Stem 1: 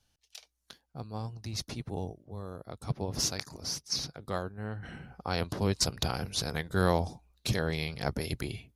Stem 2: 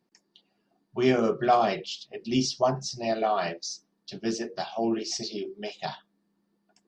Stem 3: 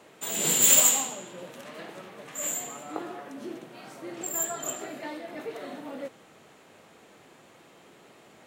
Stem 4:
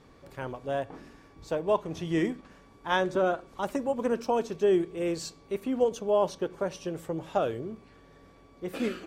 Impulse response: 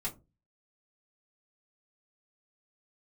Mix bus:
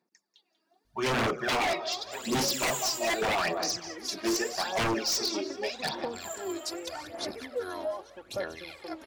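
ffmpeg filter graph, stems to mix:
-filter_complex "[0:a]aeval=exprs='val(0)+0.00562*(sin(2*PI*50*n/s)+sin(2*PI*2*50*n/s)/2+sin(2*PI*3*50*n/s)/3+sin(2*PI*4*50*n/s)/4+sin(2*PI*5*50*n/s)/5)':channel_layout=same,aecho=1:1:2.9:0.74,adelay=850,volume=-11.5dB,asplit=2[link_01][link_02];[link_02]volume=-13dB[link_03];[1:a]bandreject=frequency=3000:width=5.7,dynaudnorm=framelen=140:gausssize=9:maxgain=10.5dB,volume=-5.5dB,asplit=2[link_04][link_05];[link_05]volume=-15.5dB[link_06];[2:a]adelay=1900,volume=-0.5dB,asplit=2[link_07][link_08];[link_08]volume=-22.5dB[link_09];[3:a]aecho=1:1:3.6:0.96,adelay=1750,volume=-5dB[link_10];[link_07][link_10]amix=inputs=2:normalize=0,lowpass=frequency=1700:poles=1,acompressor=threshold=-35dB:ratio=3,volume=0dB[link_11];[link_03][link_06][link_09]amix=inputs=3:normalize=0,aecho=0:1:190|380|570|760|950|1140:1|0.4|0.16|0.064|0.0256|0.0102[link_12];[link_01][link_04][link_11][link_12]amix=inputs=4:normalize=0,highpass=frequency=680:poles=1,aphaser=in_gain=1:out_gain=1:delay=3.2:decay=0.63:speed=0.83:type=sinusoidal,aeval=exprs='0.0794*(abs(mod(val(0)/0.0794+3,4)-2)-1)':channel_layout=same"

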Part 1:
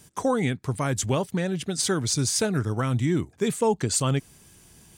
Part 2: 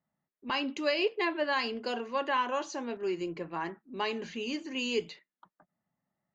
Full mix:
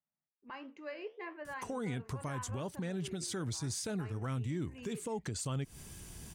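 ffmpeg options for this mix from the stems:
ffmpeg -i stem1.wav -i stem2.wav -filter_complex "[0:a]lowshelf=frequency=90:gain=9.5,acompressor=threshold=-26dB:ratio=6,adelay=1450,volume=1.5dB[link_01];[1:a]highshelf=frequency=2600:width_type=q:width=1.5:gain=-9.5,flanger=delay=9.1:depth=6.7:regen=81:speed=1.5:shape=triangular,volume=-10.5dB,asplit=2[link_02][link_03];[link_03]apad=whole_len=283510[link_04];[link_01][link_04]sidechaincompress=threshold=-46dB:ratio=8:attack=9.3:release=1220[link_05];[link_05][link_02]amix=inputs=2:normalize=0,alimiter=level_in=5.5dB:limit=-24dB:level=0:latency=1:release=166,volume=-5.5dB" out.wav

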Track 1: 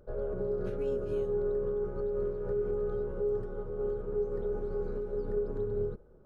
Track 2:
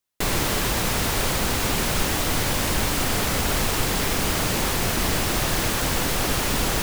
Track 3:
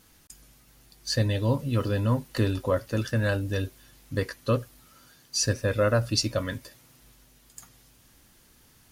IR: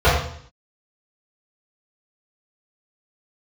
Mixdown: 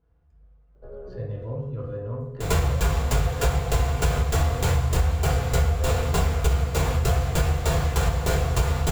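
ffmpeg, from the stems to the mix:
-filter_complex "[0:a]adelay=750,volume=-5dB[link_01];[1:a]equalizer=frequency=7300:width=6.4:gain=10,aeval=exprs='val(0)*pow(10,-22*if(lt(mod(3.3*n/s,1),2*abs(3.3)/1000),1-mod(3.3*n/s,1)/(2*abs(3.3)/1000),(mod(3.3*n/s,1)-2*abs(3.3)/1000)/(1-2*abs(3.3)/1000))/20)':channel_layout=same,adelay=2200,volume=-0.5dB,asplit=2[link_02][link_03];[link_03]volume=-14.5dB[link_04];[2:a]highshelf=frequency=6500:gain=-6,adynamicsmooth=sensitivity=0.5:basefreq=1500,volume=-16dB,asplit=3[link_05][link_06][link_07];[link_06]volume=-19dB[link_08];[link_07]apad=whole_len=308897[link_09];[link_01][link_09]sidechaincompress=threshold=-45dB:ratio=8:attack=16:release=1390[link_10];[3:a]atrim=start_sample=2205[link_11];[link_04][link_08]amix=inputs=2:normalize=0[link_12];[link_12][link_11]afir=irnorm=-1:irlink=0[link_13];[link_10][link_02][link_05][link_13]amix=inputs=4:normalize=0,acompressor=threshold=-19dB:ratio=5"

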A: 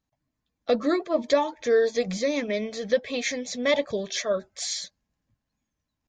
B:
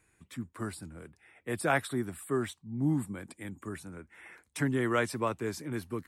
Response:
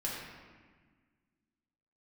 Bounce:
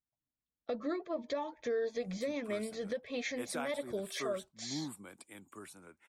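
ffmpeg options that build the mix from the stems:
-filter_complex "[0:a]agate=range=-12dB:threshold=-41dB:ratio=16:detection=peak,lowpass=frequency=2800:poles=1,volume=-6dB[link_01];[1:a]highpass=frequency=720:poles=1,equalizer=frequency=1800:width_type=o:width=0.46:gain=-8.5,adelay=1900,volume=-2.5dB[link_02];[link_01][link_02]amix=inputs=2:normalize=0,alimiter=level_in=3dB:limit=-24dB:level=0:latency=1:release=314,volume=-3dB"

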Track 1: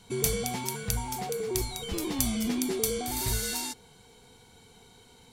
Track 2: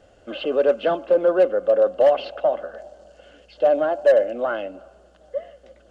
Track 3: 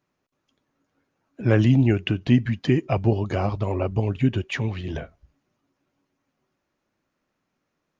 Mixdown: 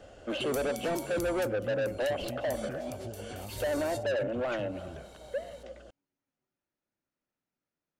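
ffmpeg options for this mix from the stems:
ffmpeg -i stem1.wav -i stem2.wav -i stem3.wav -filter_complex "[0:a]adelay=300,volume=-1dB[link_01];[1:a]acrossover=split=410[link_02][link_03];[link_03]acompressor=threshold=-35dB:ratio=2.5[link_04];[link_02][link_04]amix=inputs=2:normalize=0,asoftclip=type=tanh:threshold=-30dB,volume=2.5dB[link_05];[2:a]bandreject=frequency=1100:width=12,volume=-14.5dB,asplit=2[link_06][link_07];[link_07]apad=whole_len=248262[link_08];[link_01][link_08]sidechaincompress=threshold=-45dB:ratio=8:attack=16:release=164[link_09];[link_09][link_06]amix=inputs=2:normalize=0,acompressor=threshold=-38dB:ratio=6,volume=0dB[link_10];[link_05][link_10]amix=inputs=2:normalize=0" out.wav

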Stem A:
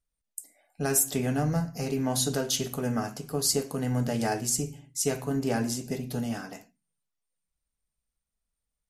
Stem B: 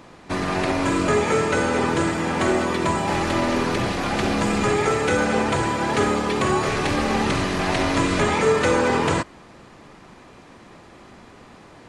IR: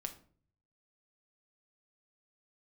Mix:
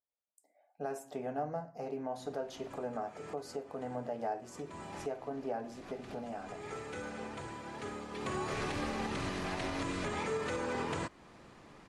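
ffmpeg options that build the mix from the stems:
-filter_complex "[0:a]bandpass=frequency=690:width_type=q:width=1.8:csg=0,volume=-0.5dB,asplit=2[link_01][link_02];[1:a]adelay=1850,volume=-10dB,afade=type=in:start_time=8.09:duration=0.53:silence=0.251189[link_03];[link_02]apad=whole_len=605891[link_04];[link_03][link_04]sidechaincompress=threshold=-48dB:ratio=8:attack=9.3:release=230[link_05];[link_01][link_05]amix=inputs=2:normalize=0,alimiter=level_in=3dB:limit=-24dB:level=0:latency=1:release=258,volume=-3dB"

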